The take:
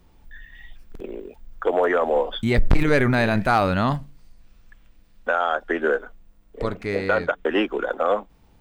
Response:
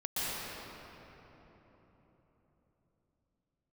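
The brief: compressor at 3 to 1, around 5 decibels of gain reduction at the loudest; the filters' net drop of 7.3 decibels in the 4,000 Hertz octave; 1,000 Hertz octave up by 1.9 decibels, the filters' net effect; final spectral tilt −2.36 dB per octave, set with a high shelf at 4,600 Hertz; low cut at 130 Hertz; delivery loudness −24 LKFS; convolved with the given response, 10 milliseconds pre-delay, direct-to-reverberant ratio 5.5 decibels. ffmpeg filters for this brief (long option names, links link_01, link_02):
-filter_complex "[0:a]highpass=130,equalizer=frequency=1000:width_type=o:gain=3.5,equalizer=frequency=4000:width_type=o:gain=-7.5,highshelf=frequency=4600:gain=-5.5,acompressor=threshold=-21dB:ratio=3,asplit=2[link_01][link_02];[1:a]atrim=start_sample=2205,adelay=10[link_03];[link_02][link_03]afir=irnorm=-1:irlink=0,volume=-13dB[link_04];[link_01][link_04]amix=inputs=2:normalize=0,volume=2dB"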